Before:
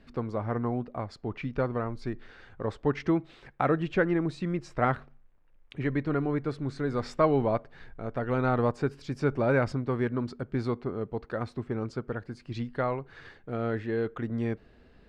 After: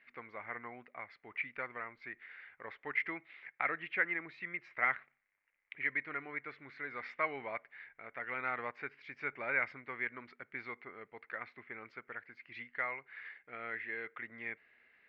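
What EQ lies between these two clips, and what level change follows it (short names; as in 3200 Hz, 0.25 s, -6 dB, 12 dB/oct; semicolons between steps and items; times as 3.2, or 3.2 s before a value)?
band-pass 2100 Hz, Q 7.5; air absorption 190 m; +12.5 dB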